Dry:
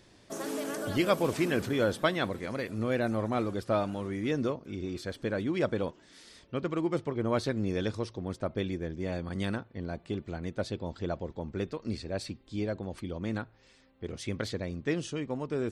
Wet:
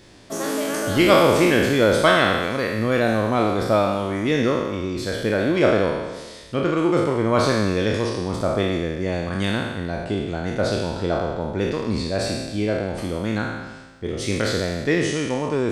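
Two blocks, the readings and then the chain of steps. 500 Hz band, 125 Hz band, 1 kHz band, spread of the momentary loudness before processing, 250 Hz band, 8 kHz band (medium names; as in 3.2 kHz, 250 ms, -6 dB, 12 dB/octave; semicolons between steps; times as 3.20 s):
+12.0 dB, +9.5 dB, +13.0 dB, 9 LU, +10.0 dB, +13.0 dB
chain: spectral sustain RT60 1.31 s; trim +8 dB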